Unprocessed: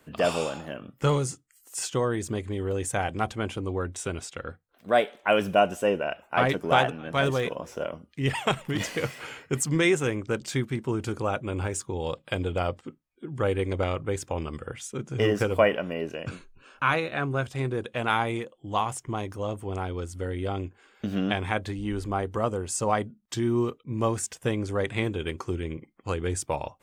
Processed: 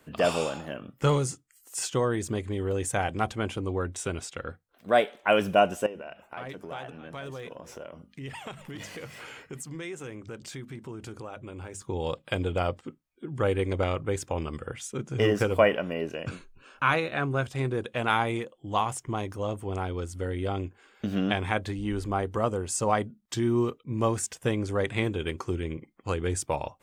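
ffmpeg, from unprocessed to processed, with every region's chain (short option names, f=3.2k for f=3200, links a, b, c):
-filter_complex "[0:a]asettb=1/sr,asplit=3[a][b][c];[a]atrim=end=5.864[d];[b]atrim=start=5.86:end=11.82,asetpts=PTS-STARTPTS,afade=t=in:d=0.004:c=qsin,afade=t=out:st=5.956:d=0.004:c=qsin,bandreject=f=50:t=h:w=6,bandreject=f=100:t=h:w=6,bandreject=f=150:t=h:w=6,bandreject=f=200:t=h:w=6,bandreject=f=250:t=h:w=6,acompressor=threshold=-40dB:ratio=3:attack=3.2:release=140:knee=1:detection=peak[e];[c]atrim=start=11.816[f];[d][e]acrossfade=d=0.004:c1=hsin:c2=qsin[g];[g][f]acrossfade=d=0.004:c1=qsin:c2=hsin"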